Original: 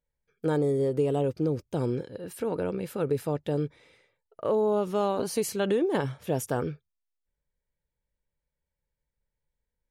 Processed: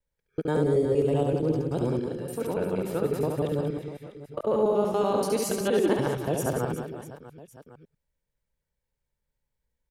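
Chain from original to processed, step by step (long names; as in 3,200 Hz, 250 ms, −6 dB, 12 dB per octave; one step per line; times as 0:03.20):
reversed piece by piece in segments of 95 ms
reverse bouncing-ball delay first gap 70 ms, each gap 1.6×, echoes 5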